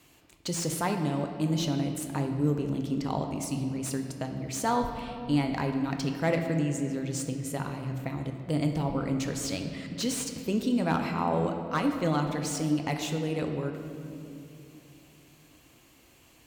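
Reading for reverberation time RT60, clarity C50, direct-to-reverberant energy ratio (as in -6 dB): 2.7 s, 6.0 dB, 4.0 dB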